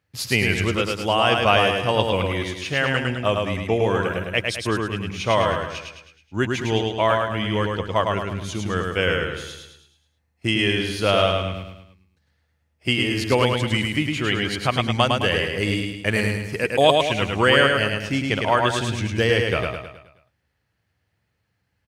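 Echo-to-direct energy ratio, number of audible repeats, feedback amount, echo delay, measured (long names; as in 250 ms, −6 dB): −2.5 dB, 5, 47%, 106 ms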